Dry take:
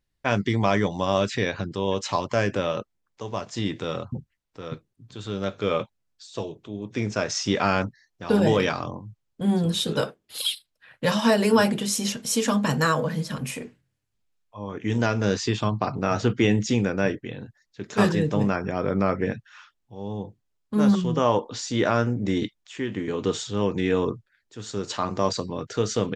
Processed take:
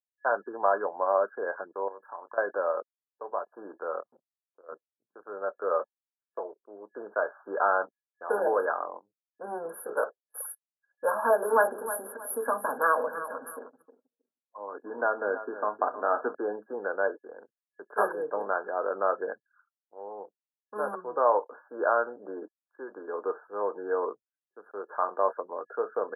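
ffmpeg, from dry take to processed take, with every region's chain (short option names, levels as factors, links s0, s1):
-filter_complex "[0:a]asettb=1/sr,asplit=3[s0][s1][s2];[s0]atrim=end=1.884[s3];[s1]atrim=start=1.88:end=2.38,asetpts=PTS-STARTPTS,afade=t=in:d=0.004:c=qsin,afade=t=out:st=0.496:d=0.004:c=qsin,equalizer=f=550:t=o:w=1:g=-6.5,acompressor=threshold=0.02:ratio=6:attack=3.2:release=140:knee=1:detection=peak,asplit=2[s4][s5];[s5]adelay=29,volume=0.473[s6];[s4][s6]amix=inputs=2:normalize=0,atrim=end_sample=22050[s7];[s2]atrim=start=2.376[s8];[s3][s7]acrossfade=d=0.004:c1=hsin:c2=qsin[s9];[s9][s8]acrossfade=d=0.004:c1=qsin:c2=hsin,asettb=1/sr,asplit=3[s10][s11][s12];[s10]atrim=end=4.004[s13];[s11]atrim=start=4:end=4.69,asetpts=PTS-STARTPTS,afade=t=in:d=0.004:c=qsin,afade=t=out:st=0.686:d=0.004:c=qsin,acompressor=threshold=0.00224:ratio=1.5:attack=3.2:release=140:knee=1:detection=peak,acrusher=bits=4:mode=log:mix=0:aa=0.000001[s14];[s12]atrim=start=4.686[s15];[s13][s14]acrossfade=d=0.004:c1=hsin:c2=qsin[s16];[s16][s15]acrossfade=d=0.004:c1=qsin:c2=hsin,asettb=1/sr,asplit=3[s17][s18][s19];[s17]atrim=end=11.124[s20];[s18]atrim=start=11.12:end=16.35,asetpts=PTS-STARTPTS,afade=t=in:d=0.004:c=qsin,afade=t=out:st=5.226:d=0.004:c=qsin,equalizer=f=260:w=6.9:g=12,aecho=1:1:314|628|942:0.237|0.0783|0.0258,atrim=end_sample=230643[s21];[s19]atrim=start=16.346[s22];[s20][s21]acrossfade=d=0.004:c1=hsin:c2=qsin[s23];[s23][s22]acrossfade=d=0.004:c1=qsin:c2=hsin,anlmdn=1,highpass=f=490:w=0.5412,highpass=f=490:w=1.3066,afftfilt=real='re*(1-between(b*sr/4096,1700,9900))':imag='im*(1-between(b*sr/4096,1700,9900))':win_size=4096:overlap=0.75"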